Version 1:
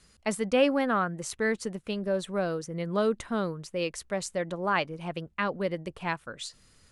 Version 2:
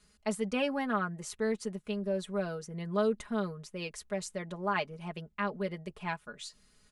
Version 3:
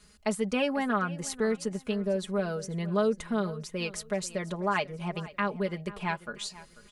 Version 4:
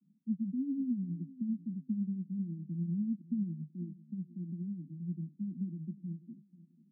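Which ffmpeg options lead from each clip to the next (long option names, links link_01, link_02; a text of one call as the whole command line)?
ffmpeg -i in.wav -af "aecho=1:1:4.8:0.76,volume=-7dB" out.wav
ffmpeg -i in.wav -filter_complex "[0:a]asplit=2[link_01][link_02];[link_02]acompressor=threshold=-37dB:ratio=6,volume=2dB[link_03];[link_01][link_03]amix=inputs=2:normalize=0,aecho=1:1:490|980|1470:0.126|0.0365|0.0106" out.wav
ffmpeg -i in.wav -af "tremolo=f=10:d=0.49,asuperpass=centerf=220:order=20:qfactor=1.2" out.wav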